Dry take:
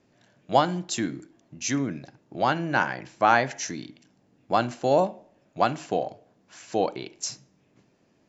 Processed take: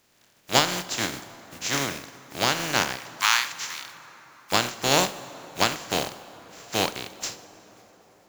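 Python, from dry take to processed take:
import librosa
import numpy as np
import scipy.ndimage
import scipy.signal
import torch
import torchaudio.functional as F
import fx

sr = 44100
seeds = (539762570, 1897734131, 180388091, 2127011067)

y = fx.spec_flatten(x, sr, power=0.29)
y = fx.cheby1_highpass(y, sr, hz=960.0, order=4, at=(2.97, 4.52))
y = fx.rev_plate(y, sr, seeds[0], rt60_s=5.0, hf_ratio=0.5, predelay_ms=0, drr_db=14.5)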